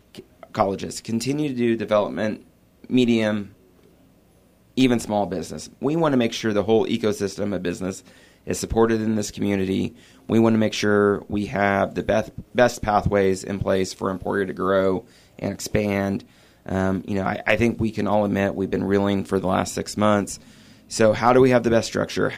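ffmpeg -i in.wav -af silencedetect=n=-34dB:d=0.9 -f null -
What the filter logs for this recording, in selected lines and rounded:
silence_start: 3.47
silence_end: 4.77 | silence_duration: 1.31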